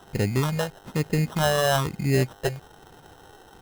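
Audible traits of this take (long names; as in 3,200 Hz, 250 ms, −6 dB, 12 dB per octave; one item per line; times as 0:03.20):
phaser sweep stages 6, 1.1 Hz, lowest notch 240–1,200 Hz
aliases and images of a low sample rate 2,300 Hz, jitter 0%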